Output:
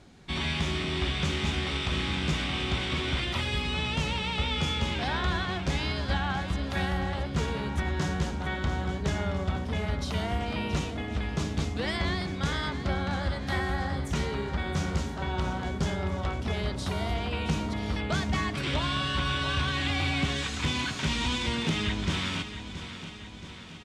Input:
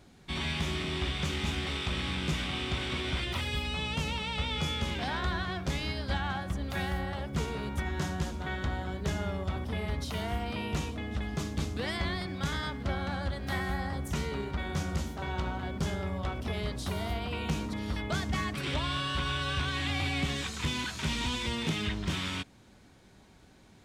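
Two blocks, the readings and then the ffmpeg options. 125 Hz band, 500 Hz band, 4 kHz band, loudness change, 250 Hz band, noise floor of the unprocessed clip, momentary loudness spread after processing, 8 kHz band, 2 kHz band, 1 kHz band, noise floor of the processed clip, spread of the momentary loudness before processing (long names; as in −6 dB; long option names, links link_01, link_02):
+3.5 dB, +3.5 dB, +3.5 dB, +3.5 dB, +3.5 dB, −57 dBFS, 4 LU, +2.0 dB, +3.5 dB, +3.5 dB, −40 dBFS, 4 LU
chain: -af "lowpass=8500,aecho=1:1:675|1350|2025|2700|3375|4050|4725:0.266|0.157|0.0926|0.0546|0.0322|0.019|0.0112,volume=3dB"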